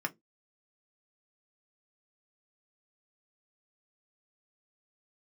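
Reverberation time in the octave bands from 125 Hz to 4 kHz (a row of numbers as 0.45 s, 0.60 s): 0.25 s, 0.25 s, 0.20 s, 0.10 s, 0.10 s, 0.10 s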